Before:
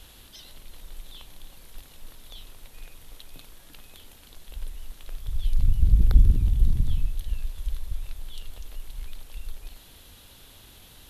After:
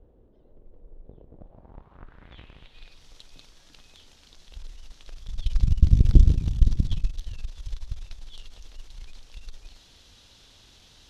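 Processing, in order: 1.07–2.64 cycle switcher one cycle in 2, inverted; low-pass sweep 470 Hz -> 5700 Hz, 1.28–3.06; added harmonics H 2 -14 dB, 3 -14 dB, 6 -16 dB, 8 -27 dB, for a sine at -3.5 dBFS; gain +3 dB

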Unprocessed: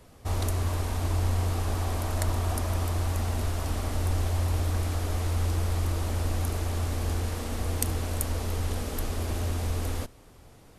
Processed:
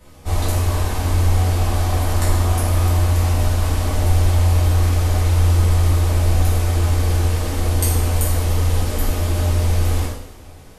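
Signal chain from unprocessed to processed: two-slope reverb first 0.71 s, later 2.5 s, from -18 dB, DRR -8.5 dB

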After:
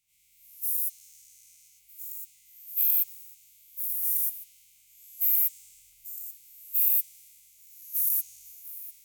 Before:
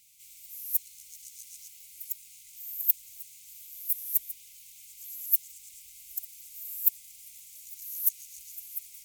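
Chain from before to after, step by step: spectral dilation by 0.24 s; crackle 18/s -50 dBFS; three-band expander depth 40%; gain -8.5 dB

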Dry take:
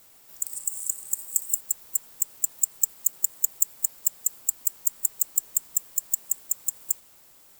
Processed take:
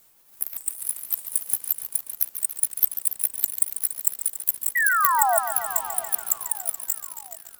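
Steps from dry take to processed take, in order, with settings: repeated pitch sweeps +9.5 st, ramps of 0.574 s; bell 14000 Hz +6.5 dB 0.52 oct; in parallel at -4 dB: sample gate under -24.5 dBFS; on the sum: painted sound fall, 4.75–5.38, 640–2000 Hz -17 dBFS; on a send: split-band echo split 1100 Hz, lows 0.661 s, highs 0.427 s, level -16 dB; on the sum: lo-fi delay 0.142 s, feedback 80%, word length 6-bit, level -10.5 dB; gain -4 dB

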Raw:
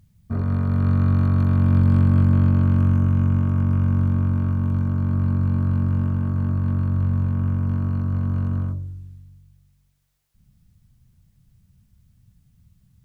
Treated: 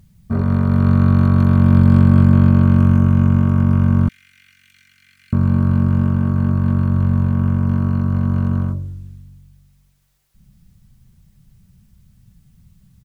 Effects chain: 4.08–5.33 elliptic high-pass 2000 Hz, stop band 50 dB; comb 5.2 ms, depth 33%; gain +7 dB

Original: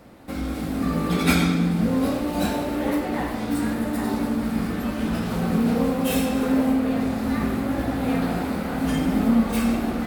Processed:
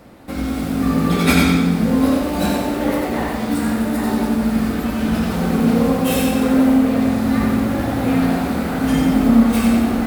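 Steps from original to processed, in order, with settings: lo-fi delay 91 ms, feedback 35%, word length 7-bit, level -4 dB; gain +4 dB

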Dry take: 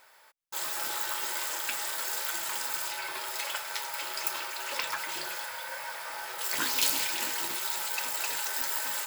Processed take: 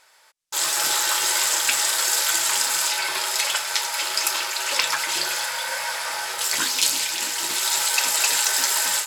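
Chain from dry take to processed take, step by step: LPF 8500 Hz 12 dB/oct; high shelf 3700 Hz +11.5 dB; AGC gain up to 10 dB; gain -1 dB

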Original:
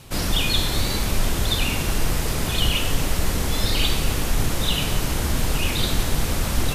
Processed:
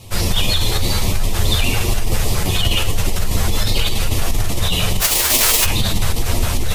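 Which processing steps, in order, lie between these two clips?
5–5.64 spectral whitening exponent 0.1; LFO notch square 4.9 Hz 280–1500 Hz; chorus voices 4, 0.49 Hz, delay 10 ms, depth 1.6 ms; in parallel at +2 dB: negative-ratio compressor -21 dBFS, ratio -0.5

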